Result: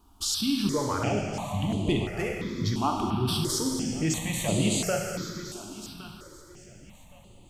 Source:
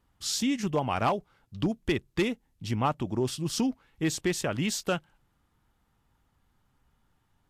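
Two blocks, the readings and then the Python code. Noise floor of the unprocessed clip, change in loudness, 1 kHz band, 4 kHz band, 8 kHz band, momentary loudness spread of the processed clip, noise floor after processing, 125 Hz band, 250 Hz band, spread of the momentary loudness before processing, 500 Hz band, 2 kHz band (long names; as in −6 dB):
−72 dBFS, +1.5 dB, 0.0 dB, +4.0 dB, +4.5 dB, 13 LU, −52 dBFS, +4.5 dB, +2.0 dB, 5 LU, +1.0 dB, 0.0 dB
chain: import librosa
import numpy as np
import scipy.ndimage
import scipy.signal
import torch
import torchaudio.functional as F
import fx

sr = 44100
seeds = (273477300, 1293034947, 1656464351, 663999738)

p1 = fx.peak_eq(x, sr, hz=1800.0, db=-4.0, octaves=0.55)
p2 = fx.over_compress(p1, sr, threshold_db=-40.0, ratio=-1.0)
p3 = p1 + (p2 * librosa.db_to_amplitude(1.5))
p4 = fx.echo_feedback(p3, sr, ms=1115, feedback_pct=24, wet_db=-14.0)
p5 = fx.rev_plate(p4, sr, seeds[0], rt60_s=2.4, hf_ratio=1.0, predelay_ms=0, drr_db=0.0)
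y = fx.phaser_held(p5, sr, hz=2.9, low_hz=520.0, high_hz=5400.0)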